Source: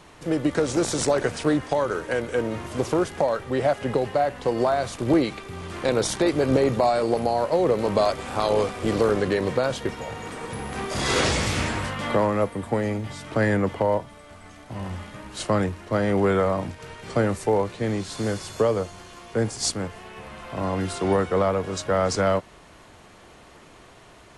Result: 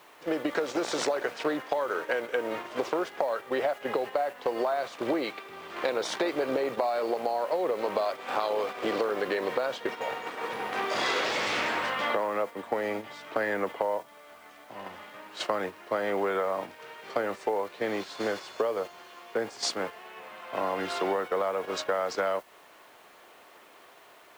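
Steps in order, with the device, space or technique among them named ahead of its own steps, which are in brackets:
baby monitor (band-pass filter 460–4,000 Hz; downward compressor 10 to 1, threshold −28 dBFS, peak gain reduction 11 dB; white noise bed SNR 28 dB; noise gate −37 dBFS, range −6 dB)
level +3.5 dB

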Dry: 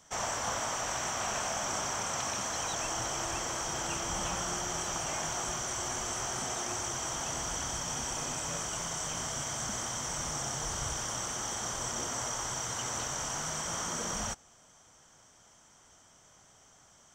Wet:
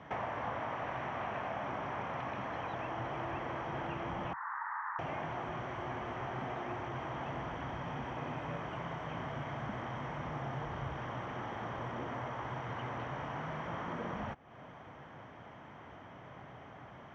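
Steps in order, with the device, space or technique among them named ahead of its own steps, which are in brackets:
0:04.33–0:04.99: Chebyshev band-pass filter 890–1,900 Hz, order 4
bass amplifier (downward compressor 5 to 1, threshold −48 dBFS, peak gain reduction 16 dB; loudspeaker in its box 74–2,300 Hz, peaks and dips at 130 Hz +5 dB, 280 Hz +3 dB, 1,400 Hz −5 dB)
level +13 dB

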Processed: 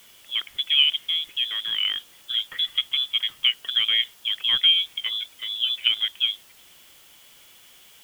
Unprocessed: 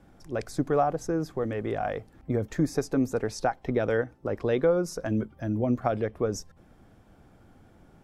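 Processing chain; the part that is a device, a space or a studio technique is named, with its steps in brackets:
scrambled radio voice (band-pass filter 390–2,900 Hz; voice inversion scrambler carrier 3,700 Hz; white noise bed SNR 27 dB)
level +6 dB

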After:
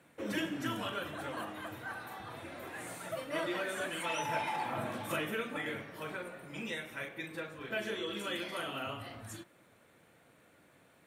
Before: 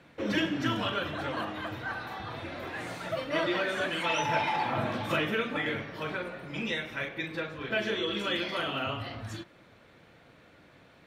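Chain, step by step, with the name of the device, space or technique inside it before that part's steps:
budget condenser microphone (high-pass filter 120 Hz 6 dB per octave; high shelf with overshoot 6,700 Hz +11.5 dB, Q 1.5)
level −6 dB

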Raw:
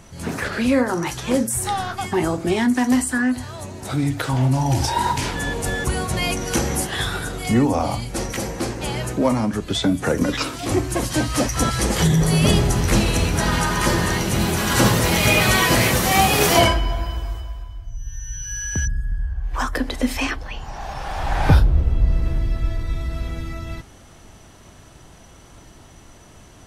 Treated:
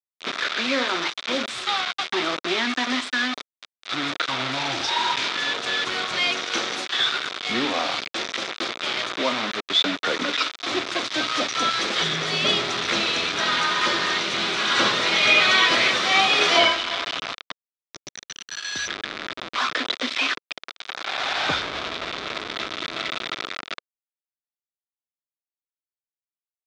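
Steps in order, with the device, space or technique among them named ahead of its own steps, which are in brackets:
0:06.45–0:06.98: low-shelf EQ 90 Hz −10.5 dB
hand-held game console (bit reduction 4 bits; loudspeaker in its box 430–5,300 Hz, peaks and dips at 500 Hz −4 dB, 850 Hz −6 dB, 1,300 Hz +5 dB, 2,300 Hz +4 dB, 3,600 Hz +9 dB)
level −1.5 dB

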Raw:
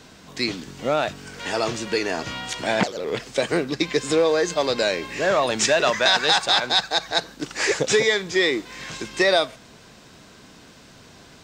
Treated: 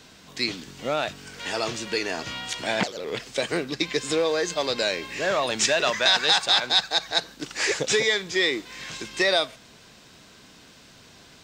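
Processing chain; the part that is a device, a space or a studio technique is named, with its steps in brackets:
presence and air boost (parametric band 3,300 Hz +4.5 dB 1.9 octaves; high-shelf EQ 10,000 Hz +6.5 dB)
level −5 dB

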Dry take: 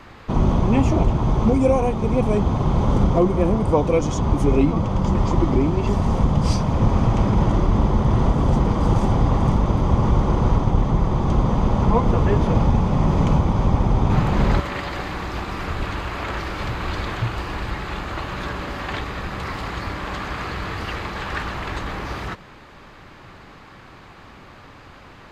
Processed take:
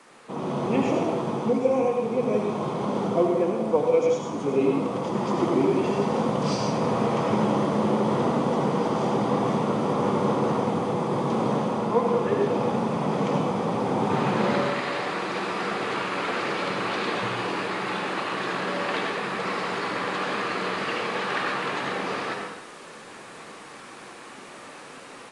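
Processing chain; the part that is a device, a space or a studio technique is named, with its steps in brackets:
Bessel high-pass filter 180 Hz, order 6
filmed off a television (band-pass filter 190–6,400 Hz; parametric band 480 Hz +7 dB 0.22 octaves; convolution reverb RT60 0.80 s, pre-delay 70 ms, DRR 1 dB; white noise bed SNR 28 dB; automatic gain control gain up to 8.5 dB; level −8.5 dB; AAC 48 kbit/s 22,050 Hz)

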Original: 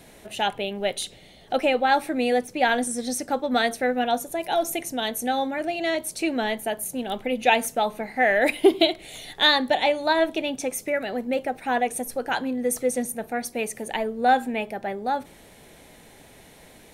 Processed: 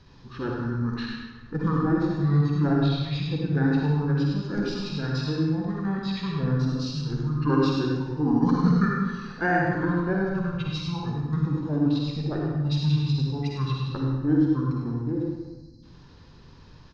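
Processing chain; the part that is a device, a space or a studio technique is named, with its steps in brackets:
0:09.69–0:11.13: comb filter 0.8 ms, depth 50%
0:15.24–0:15.83: time-frequency box erased 710–6,800 Hz
monster voice (pitch shifter −9 semitones; formants moved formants −5.5 semitones; low-shelf EQ 190 Hz +8 dB; single-tap delay 101 ms −6 dB; convolution reverb RT60 1.1 s, pre-delay 44 ms, DRR −1 dB)
level −8 dB

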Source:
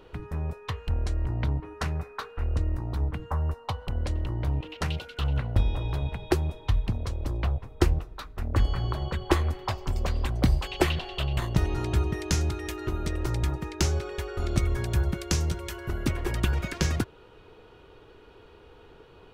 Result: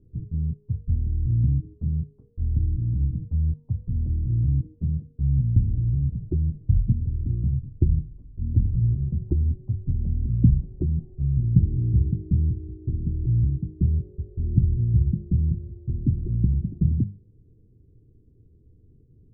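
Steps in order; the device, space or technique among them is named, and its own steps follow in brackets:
mains-hum notches 50/100/150/200 Hz
dynamic equaliser 180 Hz, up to +6 dB, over −42 dBFS, Q 1.1
the neighbour's flat through the wall (low-pass filter 260 Hz 24 dB per octave; parametric band 110 Hz +8 dB 0.87 octaves)
0:03.46–0:04.68: high shelf with overshoot 1,700 Hz −13.5 dB, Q 3
0:06.62–0:07.77: double-tracking delay 23 ms −8.5 dB

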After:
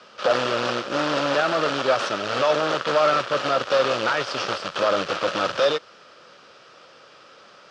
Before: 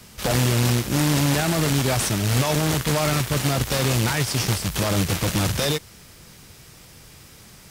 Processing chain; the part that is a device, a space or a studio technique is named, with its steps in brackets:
phone earpiece (loudspeaker in its box 460–4,400 Hz, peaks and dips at 550 Hz +9 dB, 870 Hz −3 dB, 1,300 Hz +9 dB, 2,100 Hz −8 dB, 3,900 Hz −4 dB)
level +2.5 dB

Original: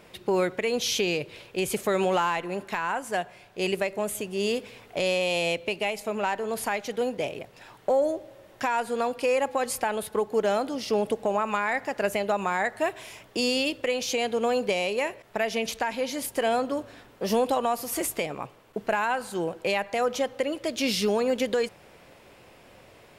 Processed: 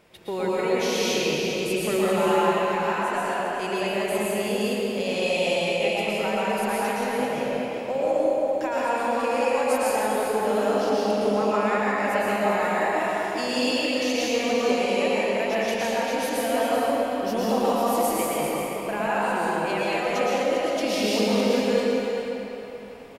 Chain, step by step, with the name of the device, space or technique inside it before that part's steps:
cave (single-tap delay 395 ms −8.5 dB; convolution reverb RT60 3.7 s, pre-delay 106 ms, DRR −8 dB)
level −6 dB

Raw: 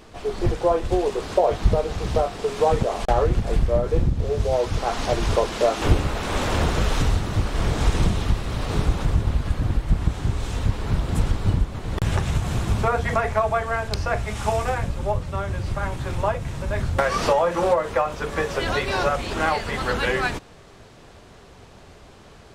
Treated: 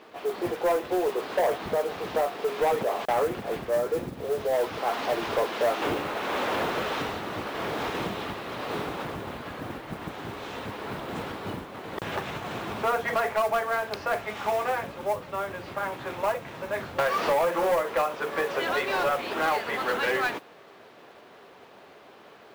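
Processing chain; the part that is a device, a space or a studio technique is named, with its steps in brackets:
carbon microphone (band-pass filter 330–3,300 Hz; soft clipping −18.5 dBFS, distortion −12 dB; noise that follows the level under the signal 22 dB)

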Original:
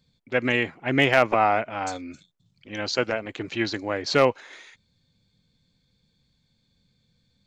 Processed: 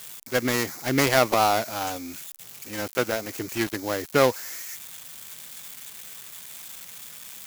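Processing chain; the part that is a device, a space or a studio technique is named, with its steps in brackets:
budget class-D amplifier (gap after every zero crossing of 0.17 ms; spike at every zero crossing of −22.5 dBFS)

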